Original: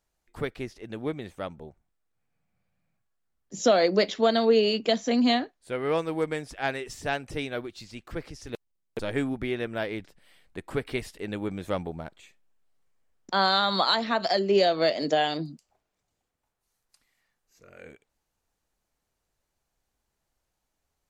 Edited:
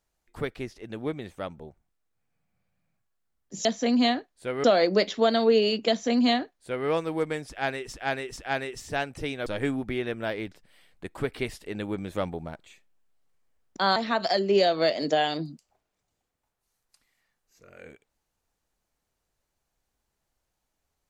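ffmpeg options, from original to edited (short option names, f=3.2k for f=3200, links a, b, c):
-filter_complex "[0:a]asplit=7[a][b][c][d][e][f][g];[a]atrim=end=3.652[h];[b]atrim=start=4.898:end=5.892[i];[c]atrim=start=3.648:end=6.942[j];[d]atrim=start=6.498:end=6.942[k];[e]atrim=start=6.498:end=7.592[l];[f]atrim=start=8.988:end=13.492[m];[g]atrim=start=13.958[n];[h][i]acrossfade=d=0.004:c1=hsin:c2=hsin[o];[o][j]acrossfade=d=0.004:c1=hsin:c2=hsin[p];[p][k]acrossfade=d=0.004:c1=hsin:c2=hsin[q];[q][l]acrossfade=d=0.004:c1=hsin:c2=hsin[r];[r][m]acrossfade=d=0.004:c1=hsin:c2=hsin[s];[s][n]acrossfade=d=0.004:c1=hsin:c2=hsin"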